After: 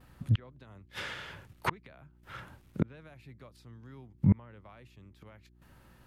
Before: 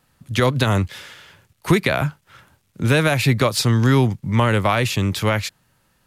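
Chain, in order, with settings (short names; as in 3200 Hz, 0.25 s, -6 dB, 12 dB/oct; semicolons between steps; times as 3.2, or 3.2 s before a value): flipped gate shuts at -16 dBFS, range -38 dB; bell 7500 Hz -9.5 dB 2.2 oct; gate with hold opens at -58 dBFS; buzz 60 Hz, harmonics 6, -65 dBFS -6 dB/oct; treble ducked by the level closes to 2600 Hz, closed at -29 dBFS; gain +3.5 dB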